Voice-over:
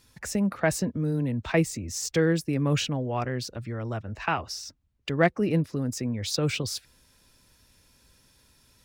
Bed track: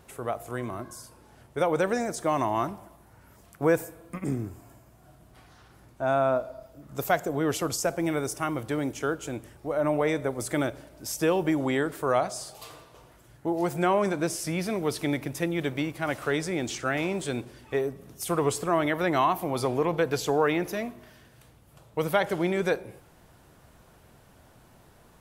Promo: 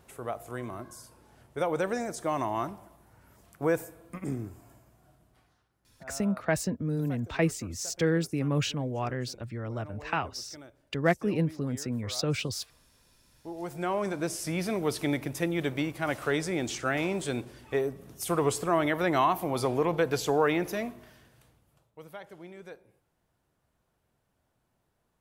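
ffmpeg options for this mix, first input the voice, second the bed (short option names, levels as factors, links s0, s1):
-filter_complex "[0:a]adelay=5850,volume=0.708[s0];[1:a]volume=7.08,afade=t=out:st=4.76:d=0.92:silence=0.125893,afade=t=in:st=13.21:d=1.45:silence=0.0891251,afade=t=out:st=20.91:d=1.01:silence=0.112202[s1];[s0][s1]amix=inputs=2:normalize=0"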